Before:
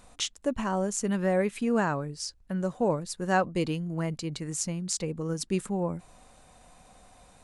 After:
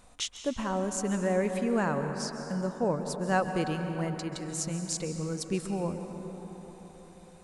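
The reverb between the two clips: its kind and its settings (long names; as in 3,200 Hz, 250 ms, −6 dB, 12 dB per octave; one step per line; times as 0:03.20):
dense smooth reverb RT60 4.3 s, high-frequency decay 0.4×, pre-delay 120 ms, DRR 6 dB
level −2.5 dB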